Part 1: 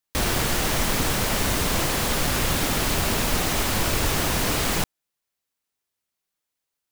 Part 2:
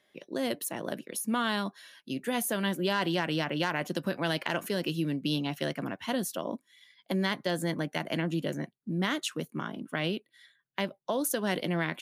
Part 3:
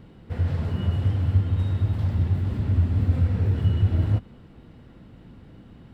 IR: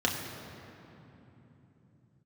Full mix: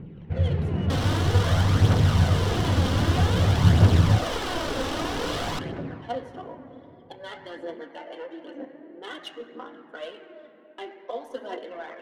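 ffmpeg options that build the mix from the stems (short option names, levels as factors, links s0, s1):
-filter_complex "[0:a]bass=f=250:g=-8,treble=f=4000:g=-2,adelay=750,volume=0.501,asplit=2[s0][s1];[s1]volume=0.237[s2];[1:a]highpass=f=350:w=0.5412,highpass=f=350:w=1.3066,aphaser=in_gain=1:out_gain=1:delay=4.6:decay=0.64:speed=0.58:type=triangular,adynamicequalizer=threshold=0.00562:dfrequency=2600:dqfactor=0.7:tfrequency=2600:tqfactor=0.7:attack=5:release=100:ratio=0.375:range=3:mode=cutabove:tftype=highshelf,volume=0.251,asplit=2[s3][s4];[s4]volume=0.422[s5];[2:a]equalizer=f=160:t=o:w=0.67:g=11,equalizer=f=400:t=o:w=0.67:g=7,equalizer=f=2500:t=o:w=0.67:g=7,volume=0.708[s6];[3:a]atrim=start_sample=2205[s7];[s2][s5]amix=inputs=2:normalize=0[s8];[s8][s7]afir=irnorm=-1:irlink=0[s9];[s0][s3][s6][s9]amix=inputs=4:normalize=0,aphaser=in_gain=1:out_gain=1:delay=3.9:decay=0.4:speed=0.52:type=triangular,adynamicsmooth=sensitivity=5:basefreq=2400"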